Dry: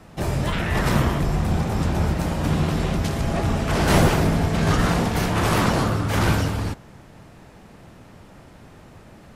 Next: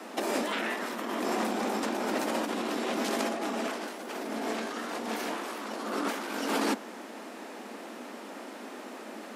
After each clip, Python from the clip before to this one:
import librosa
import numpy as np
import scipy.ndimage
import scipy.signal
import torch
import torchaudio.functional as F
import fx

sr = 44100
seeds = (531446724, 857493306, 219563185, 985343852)

y = scipy.signal.sosfilt(scipy.signal.butter(12, 220.0, 'highpass', fs=sr, output='sos'), x)
y = fx.over_compress(y, sr, threshold_db=-33.0, ratio=-1.0)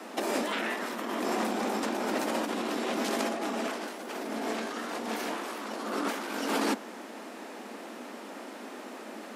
y = x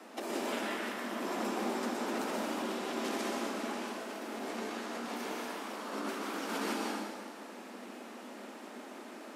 y = fx.rev_plate(x, sr, seeds[0], rt60_s=1.7, hf_ratio=0.95, predelay_ms=110, drr_db=-1.5)
y = y * librosa.db_to_amplitude(-8.5)